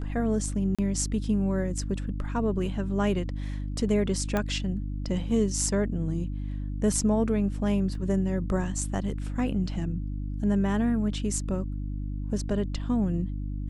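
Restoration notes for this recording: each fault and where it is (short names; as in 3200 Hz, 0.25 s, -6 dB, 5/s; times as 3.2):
hum 50 Hz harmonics 6 -32 dBFS
0.75–0.79 gap 36 ms
4.37 pop -14 dBFS
7.95 gap 2.3 ms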